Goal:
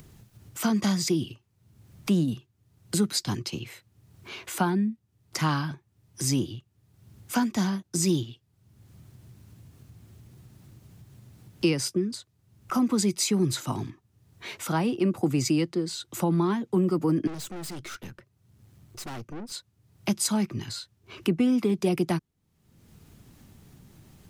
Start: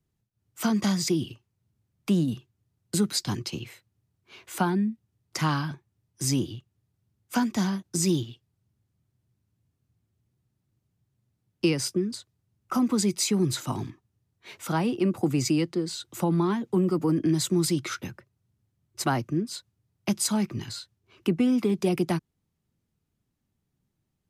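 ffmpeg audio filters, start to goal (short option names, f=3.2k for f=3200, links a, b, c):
-filter_complex "[0:a]acompressor=mode=upward:threshold=-31dB:ratio=2.5,asettb=1/sr,asplit=3[a][b][c];[a]atrim=end=17.274[d];[b]atrim=start=17.27:end=19.52,asetpts=PTS-STARTPTS,afade=t=in:d=0.004:c=qsin,afade=t=out:st=2.246:d=0.004:c=qsin,aeval=exprs='(tanh(63.1*val(0)+0.65)-tanh(0.65))/63.1':c=same[e];[c]atrim=start=19.516[f];[d][e]acrossfade=d=0.004:c1=hsin:c2=qsin[g];[g][f]acrossfade=d=0.004:c1=qsin:c2=hsin"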